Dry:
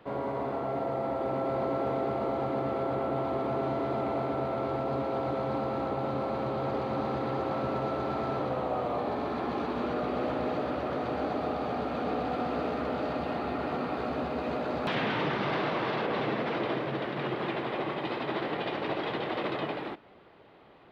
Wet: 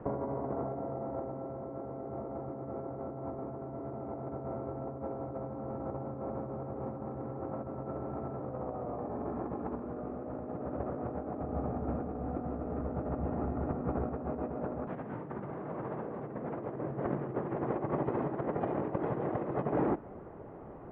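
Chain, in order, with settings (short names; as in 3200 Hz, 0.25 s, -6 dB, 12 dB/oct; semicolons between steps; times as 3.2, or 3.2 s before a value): Bessel low-pass 1100 Hz, order 4; tilt -2 dB/oct; negative-ratio compressor -35 dBFS, ratio -0.5; 11.43–14.09 low shelf 110 Hz +11.5 dB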